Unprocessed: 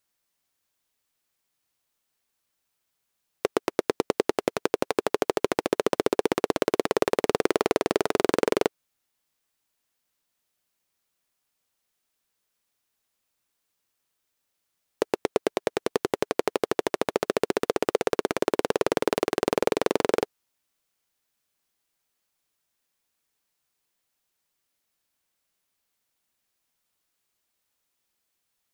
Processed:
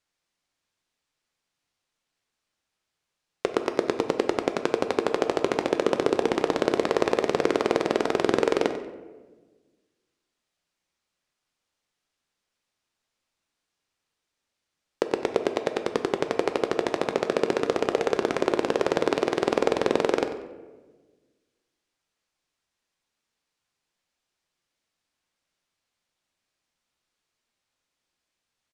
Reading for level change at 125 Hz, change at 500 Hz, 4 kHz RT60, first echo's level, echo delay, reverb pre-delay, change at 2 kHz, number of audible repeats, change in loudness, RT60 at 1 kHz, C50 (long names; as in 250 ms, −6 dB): +1.5 dB, +1.0 dB, 0.65 s, −14.5 dB, 94 ms, 4 ms, +1.0 dB, 1, +1.0 dB, 1.1 s, 9.0 dB